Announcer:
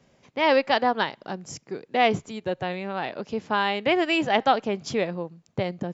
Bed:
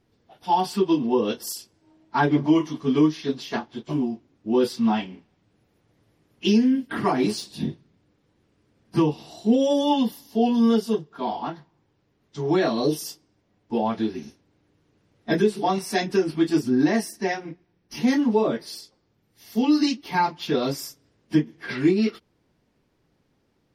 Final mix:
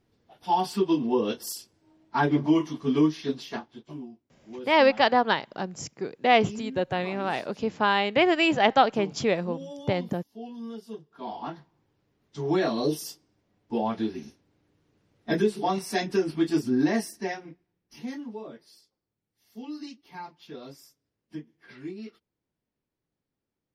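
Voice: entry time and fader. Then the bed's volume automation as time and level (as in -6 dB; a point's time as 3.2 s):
4.30 s, +1.0 dB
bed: 3.36 s -3 dB
4.25 s -19.5 dB
10.74 s -19.5 dB
11.54 s -3.5 dB
17.05 s -3.5 dB
18.39 s -18.5 dB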